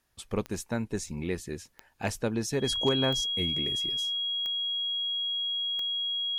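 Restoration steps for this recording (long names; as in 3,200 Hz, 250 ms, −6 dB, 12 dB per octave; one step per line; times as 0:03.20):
clipped peaks rebuilt −16.5 dBFS
click removal
notch filter 3,300 Hz, Q 30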